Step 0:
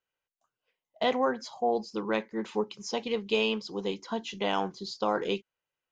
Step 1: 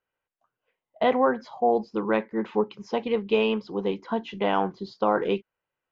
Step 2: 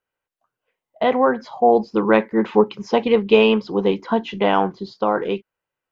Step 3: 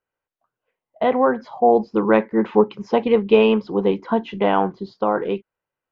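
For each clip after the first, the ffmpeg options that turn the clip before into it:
ffmpeg -i in.wav -af "lowpass=2100,volume=5.5dB" out.wav
ffmpeg -i in.wav -af "dynaudnorm=framelen=220:gausssize=13:maxgain=11.5dB,volume=1dB" out.wav
ffmpeg -i in.wav -af "highshelf=frequency=3400:gain=-11.5" out.wav

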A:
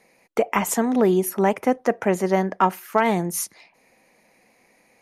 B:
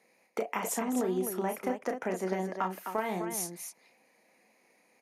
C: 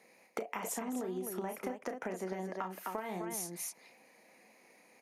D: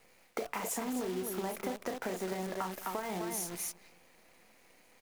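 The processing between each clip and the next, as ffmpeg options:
ffmpeg -i in.wav -filter_complex "[0:a]highpass=190,acompressor=threshold=-20dB:ratio=6,asplit=2[link_01][link_02];[link_02]aecho=0:1:32.07|256.6:0.501|0.447[link_03];[link_01][link_03]amix=inputs=2:normalize=0,volume=-8.5dB" out.wav
ffmpeg -i in.wav -af "acompressor=threshold=-40dB:ratio=6,volume=4dB" out.wav
ffmpeg -i in.wav -filter_complex "[0:a]asplit=2[link_01][link_02];[link_02]adelay=214,lowpass=frequency=930:poles=1,volume=-16.5dB,asplit=2[link_03][link_04];[link_04]adelay=214,lowpass=frequency=930:poles=1,volume=0.52,asplit=2[link_05][link_06];[link_06]adelay=214,lowpass=frequency=930:poles=1,volume=0.52,asplit=2[link_07][link_08];[link_08]adelay=214,lowpass=frequency=930:poles=1,volume=0.52,asplit=2[link_09][link_10];[link_10]adelay=214,lowpass=frequency=930:poles=1,volume=0.52[link_11];[link_01][link_03][link_05][link_07][link_09][link_11]amix=inputs=6:normalize=0,asplit=2[link_12][link_13];[link_13]asoftclip=type=tanh:threshold=-37dB,volume=-8dB[link_14];[link_12][link_14]amix=inputs=2:normalize=0,acrusher=bits=8:dc=4:mix=0:aa=0.000001" out.wav

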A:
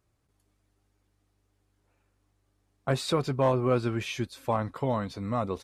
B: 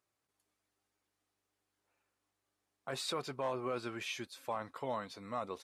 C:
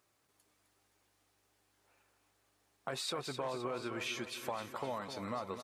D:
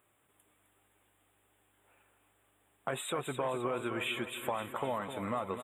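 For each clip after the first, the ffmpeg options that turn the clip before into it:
ffmpeg -i in.wav -af "highpass=frequency=710:poles=1,alimiter=limit=-22.5dB:level=0:latency=1:release=18,volume=-4.5dB" out.wav
ffmpeg -i in.wav -af "acompressor=threshold=-49dB:ratio=3,aecho=1:1:259|518|777|1036|1295|1554:0.335|0.184|0.101|0.0557|0.0307|0.0169,volume=9.5dB" out.wav
ffmpeg -i in.wav -af "asuperstop=centerf=5200:order=12:qfactor=1.4,volume=4.5dB" out.wav

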